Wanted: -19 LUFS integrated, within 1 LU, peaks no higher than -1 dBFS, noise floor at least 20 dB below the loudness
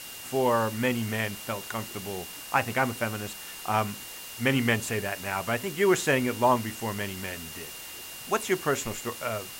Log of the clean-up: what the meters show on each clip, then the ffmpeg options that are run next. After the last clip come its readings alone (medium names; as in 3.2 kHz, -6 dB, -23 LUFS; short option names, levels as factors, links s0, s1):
steady tone 2.8 kHz; tone level -46 dBFS; noise floor -42 dBFS; noise floor target -49 dBFS; loudness -28.5 LUFS; peak level -9.0 dBFS; loudness target -19.0 LUFS
-> -af "bandreject=f=2800:w=30"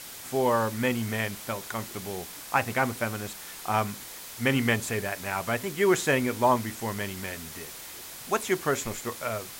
steady tone not found; noise floor -43 dBFS; noise floor target -49 dBFS
-> -af "afftdn=nr=6:nf=-43"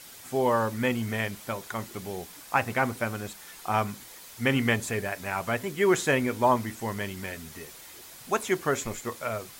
noise floor -47 dBFS; noise floor target -49 dBFS
-> -af "afftdn=nr=6:nf=-47"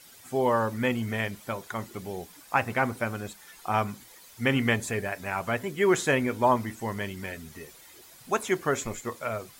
noise floor -52 dBFS; loudness -28.5 LUFS; peak level -9.0 dBFS; loudness target -19.0 LUFS
-> -af "volume=2.99,alimiter=limit=0.891:level=0:latency=1"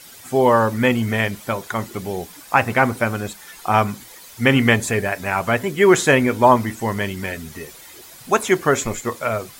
loudness -19.0 LUFS; peak level -1.0 dBFS; noise floor -43 dBFS